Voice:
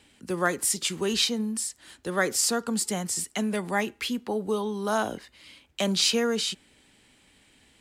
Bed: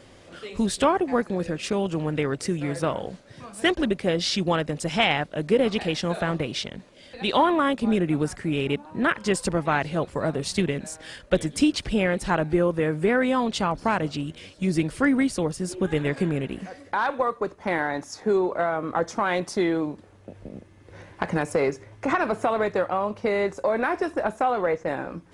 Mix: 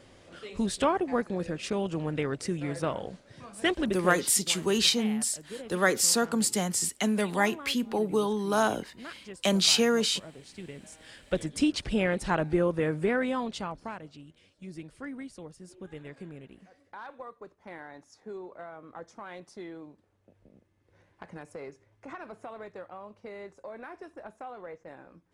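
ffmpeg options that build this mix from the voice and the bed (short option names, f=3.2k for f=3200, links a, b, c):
-filter_complex "[0:a]adelay=3650,volume=1dB[a];[1:a]volume=12dB,afade=t=out:st=3.87:d=0.5:silence=0.158489,afade=t=in:st=10.57:d=1.24:silence=0.141254,afade=t=out:st=12.89:d=1.13:silence=0.177828[b];[a][b]amix=inputs=2:normalize=0"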